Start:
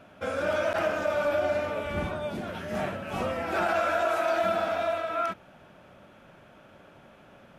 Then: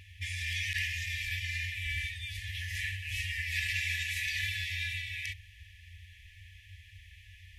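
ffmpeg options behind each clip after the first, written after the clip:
-filter_complex "[0:a]afftfilt=real='re*(1-between(b*sr/4096,100,1700))':imag='im*(1-between(b*sr/4096,100,1700))':win_size=4096:overlap=0.75,equalizer=f=150:w=0.32:g=12.5,acrossover=split=490[a][b];[a]acompressor=threshold=-45dB:ratio=6[c];[c][b]amix=inputs=2:normalize=0,volume=5.5dB"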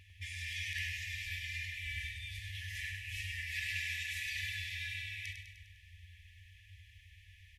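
-af "aecho=1:1:101|202|303|404|505|606|707:0.447|0.25|0.14|0.0784|0.0439|0.0246|0.0138,volume=-6.5dB"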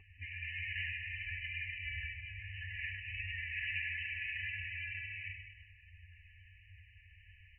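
-af "flanger=delay=2.6:depth=2.2:regen=54:speed=1.5:shape=triangular,asuperstop=centerf=3600:order=8:qfactor=5.4,volume=4.5dB" -ar 12000 -c:a libmp3lame -b:a 8k

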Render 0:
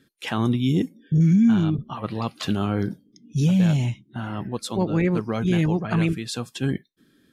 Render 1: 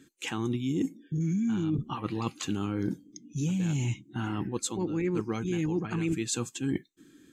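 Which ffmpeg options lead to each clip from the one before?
-af "superequalizer=6b=2.24:8b=0.355:12b=1.41:15b=3.55,areverse,acompressor=threshold=-27dB:ratio=6,areverse"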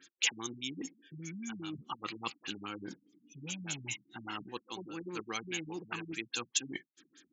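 -af "aderivative,afftfilt=real='re*lt(b*sr/1024,230*pow(7700/230,0.5+0.5*sin(2*PI*4.9*pts/sr)))':imag='im*lt(b*sr/1024,230*pow(7700/230,0.5+0.5*sin(2*PI*4.9*pts/sr)))':win_size=1024:overlap=0.75,volume=15dB"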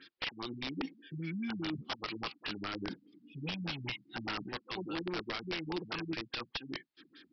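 -af "acompressor=threshold=-38dB:ratio=10,aresample=11025,aeval=exprs='(mod(56.2*val(0)+1,2)-1)/56.2':c=same,aresample=44100,volume=6dB"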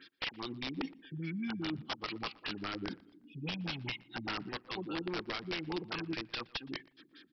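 -filter_complex "[0:a]asplit=2[a][b];[b]adelay=119,lowpass=f=2.5k:p=1,volume=-22dB,asplit=2[c][d];[d]adelay=119,lowpass=f=2.5k:p=1,volume=0.46,asplit=2[e][f];[f]adelay=119,lowpass=f=2.5k:p=1,volume=0.46[g];[a][c][e][g]amix=inputs=4:normalize=0"

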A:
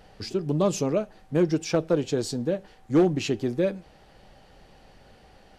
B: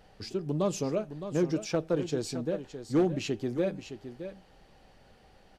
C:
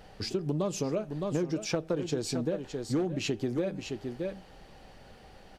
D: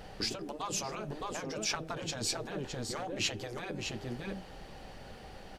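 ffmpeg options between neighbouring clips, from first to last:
-af "aecho=1:1:614:0.299,volume=-5.5dB"
-af "acompressor=threshold=-33dB:ratio=6,volume=6dB"
-af "afftfilt=real='re*lt(hypot(re,im),0.1)':imag='im*lt(hypot(re,im),0.1)':win_size=1024:overlap=0.75,volume=4dB"

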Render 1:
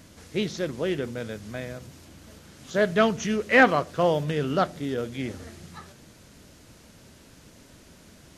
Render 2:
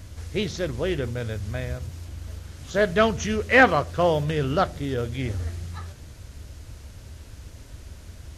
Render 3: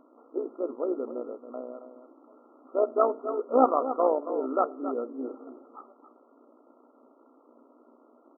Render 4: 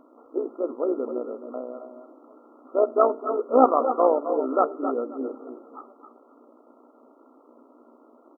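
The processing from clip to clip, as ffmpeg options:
-af "lowshelf=f=120:t=q:w=1.5:g=13.5,volume=2dB"
-af "tremolo=f=61:d=0.621,aecho=1:1:273:0.282,afftfilt=real='re*between(b*sr/4096,230,1400)':imag='im*between(b*sr/4096,230,1400)':win_size=4096:overlap=0.75"
-af "aecho=1:1:260:0.266,volume=4dB"

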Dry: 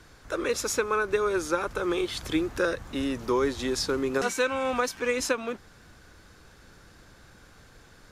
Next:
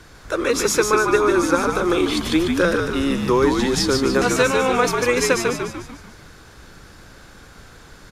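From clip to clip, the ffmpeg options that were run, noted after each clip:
-filter_complex "[0:a]asplit=7[a][b][c][d][e][f][g];[b]adelay=147,afreqshift=-67,volume=-4dB[h];[c]adelay=294,afreqshift=-134,volume=-10.2dB[i];[d]adelay=441,afreqshift=-201,volume=-16.4dB[j];[e]adelay=588,afreqshift=-268,volume=-22.6dB[k];[f]adelay=735,afreqshift=-335,volume=-28.8dB[l];[g]adelay=882,afreqshift=-402,volume=-35dB[m];[a][h][i][j][k][l][m]amix=inputs=7:normalize=0,volume=7.5dB"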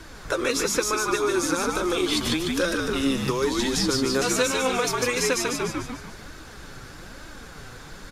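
-filter_complex "[0:a]acrossover=split=3100[a][b];[a]acompressor=threshold=-25dB:ratio=6[c];[b]alimiter=limit=-19dB:level=0:latency=1:release=157[d];[c][d]amix=inputs=2:normalize=0,flanger=delay=3.1:depth=4.9:regen=41:speed=1.1:shape=sinusoidal,volume=6.5dB"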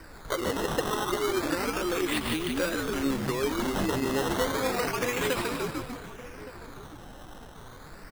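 -filter_complex "[0:a]acrusher=samples=13:mix=1:aa=0.000001:lfo=1:lforange=13:lforate=0.31,asplit=2[a][b];[b]adelay=1166,volume=-15dB,highshelf=f=4k:g=-26.2[c];[a][c]amix=inputs=2:normalize=0,volume=-4.5dB"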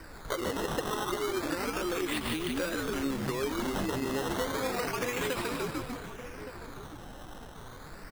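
-af "acompressor=threshold=-30dB:ratio=2.5"

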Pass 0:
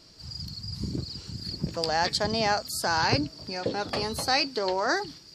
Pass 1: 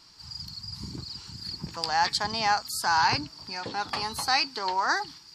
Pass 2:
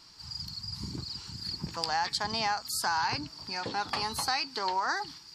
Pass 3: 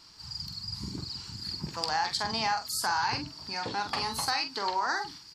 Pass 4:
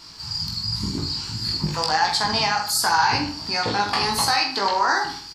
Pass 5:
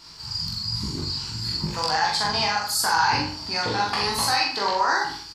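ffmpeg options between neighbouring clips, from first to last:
-af "lowshelf=f=730:t=q:w=3:g=-6.5"
-af "acompressor=threshold=-26dB:ratio=6"
-filter_complex "[0:a]asplit=2[a][b];[b]adelay=45,volume=-7.5dB[c];[a][c]amix=inputs=2:normalize=0"
-filter_complex "[0:a]asplit=2[a][b];[b]alimiter=limit=-22dB:level=0:latency=1:release=286,volume=3dB[c];[a][c]amix=inputs=2:normalize=0,flanger=delay=18:depth=2.1:speed=1.4,asplit=2[d][e];[e]adelay=79,lowpass=f=4.2k:p=1,volume=-9dB,asplit=2[f][g];[g]adelay=79,lowpass=f=4.2k:p=1,volume=0.33,asplit=2[h][i];[i]adelay=79,lowpass=f=4.2k:p=1,volume=0.33,asplit=2[j][k];[k]adelay=79,lowpass=f=4.2k:p=1,volume=0.33[l];[d][f][h][j][l]amix=inputs=5:normalize=0,volume=6.5dB"
-filter_complex "[0:a]asplit=2[a][b];[b]adelay=43,volume=-3dB[c];[a][c]amix=inputs=2:normalize=0,volume=-3.5dB"

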